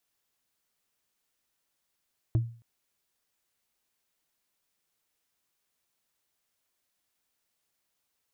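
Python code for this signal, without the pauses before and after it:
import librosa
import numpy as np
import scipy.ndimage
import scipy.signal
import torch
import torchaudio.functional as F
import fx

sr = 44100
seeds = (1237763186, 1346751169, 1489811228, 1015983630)

y = fx.strike_wood(sr, length_s=0.27, level_db=-18.5, body='bar', hz=116.0, decay_s=0.41, tilt_db=10, modes=5)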